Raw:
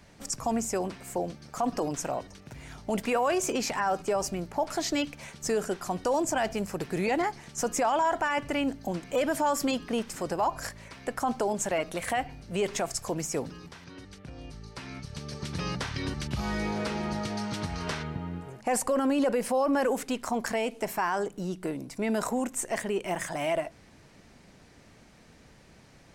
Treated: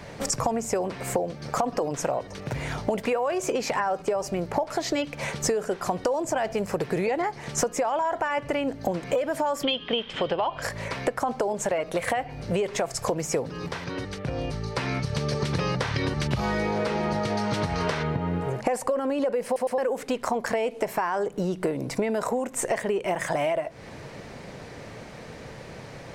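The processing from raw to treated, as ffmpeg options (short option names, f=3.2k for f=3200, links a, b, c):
-filter_complex "[0:a]asettb=1/sr,asplit=3[a][b][c];[a]atrim=end=9.634[d];[b]atrim=start=9.63:end=10.62,asetpts=PTS-STARTPTS,afade=t=in:d=0.004:c=qsin,afade=t=out:st=0.986:d=0.004:c=qsin,lowpass=f=3.2k:t=q:w=12[e];[c]atrim=start=10.616[f];[d][e]acrossfade=d=0.004:c1=hsin:c2=qsin[g];[g][f]acrossfade=d=0.004:c1=qsin:c2=hsin,asplit=4[h][i][j][k];[h]atrim=end=19.562[l];[i]atrim=start=19.448:end=19.562[m];[j]atrim=start=19.448:end=19.562[n];[k]atrim=start=19.778[o];[l][m]acrossfade=d=0.004:c1=hsin:c2=hsin[p];[p][n]acrossfade=d=0.004:c1=hsin:c2=hsin[q];[q][o]acrossfade=d=0.004:c1=hsin:c2=hsin,equalizer=f=125:t=o:w=1:g=8,equalizer=f=500:t=o:w=1:g=11,equalizer=f=1k:t=o:w=1:g=5,equalizer=f=2k:t=o:w=1:g=5,equalizer=f=4k:t=o:w=1:g=3,acompressor=threshold=-30dB:ratio=16,volume=7.5dB"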